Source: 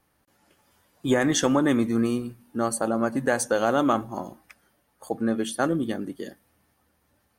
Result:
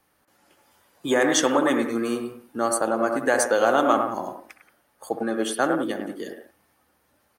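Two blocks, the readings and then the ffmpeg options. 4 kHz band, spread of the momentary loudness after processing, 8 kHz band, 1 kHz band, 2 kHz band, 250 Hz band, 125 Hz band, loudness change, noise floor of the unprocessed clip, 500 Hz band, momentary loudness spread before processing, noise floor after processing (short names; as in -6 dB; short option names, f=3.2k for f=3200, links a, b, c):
+3.0 dB, 15 LU, +3.0 dB, +4.5 dB, +4.0 dB, -1.5 dB, -9.5 dB, +2.0 dB, -70 dBFS, +3.5 dB, 14 LU, -67 dBFS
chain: -filter_complex "[0:a]lowshelf=f=200:g=-8.5,acrossover=split=240|2600[a][b][c];[a]acompressor=threshold=-43dB:ratio=6[d];[b]aecho=1:1:64.14|102|177.8:0.355|0.562|0.251[e];[d][e][c]amix=inputs=3:normalize=0,volume=3dB"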